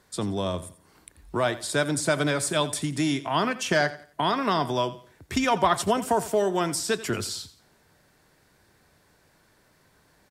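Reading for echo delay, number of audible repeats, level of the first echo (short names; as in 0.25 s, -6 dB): 87 ms, 2, -16.0 dB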